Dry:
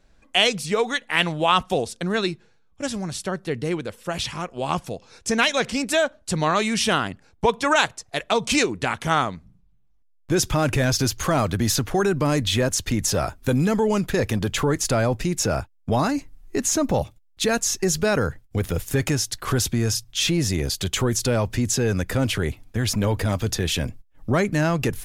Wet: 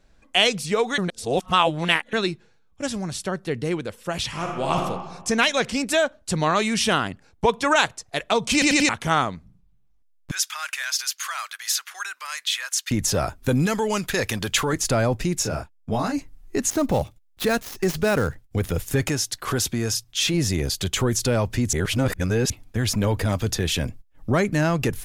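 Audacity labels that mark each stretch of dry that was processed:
0.980000	2.130000	reverse
4.270000	4.830000	reverb throw, RT60 1.2 s, DRR 0 dB
8.530000	8.530000	stutter in place 0.09 s, 4 plays
10.310000	12.910000	high-pass 1.3 kHz 24 dB/octave
13.660000	14.730000	tilt shelf lows -6 dB, about 860 Hz
15.420000	16.120000	detune thickener each way 39 cents -> 24 cents
16.700000	18.430000	dead-time distortion of 0.065 ms
19.090000	20.340000	bass shelf 140 Hz -8.5 dB
21.730000	22.500000	reverse

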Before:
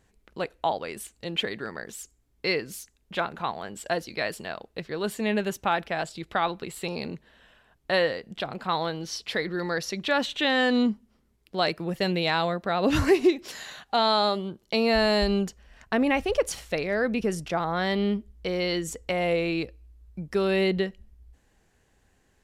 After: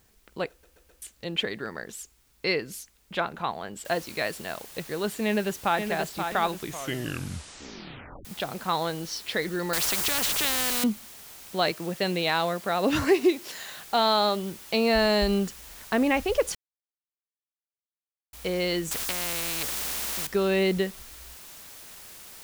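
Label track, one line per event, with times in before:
0.500000	0.500000	stutter in place 0.13 s, 4 plays
3.850000	3.850000	noise floor step -66 dB -46 dB
5.250000	5.800000	echo throw 530 ms, feedback 40%, level -6.5 dB
6.480000	6.480000	tape stop 1.77 s
9.730000	10.840000	spectrum-flattening compressor 4:1
11.710000	13.750000	high-pass 180 Hz 6 dB/octave
16.550000	18.330000	mute
18.910000	20.270000	spectrum-flattening compressor 4:1

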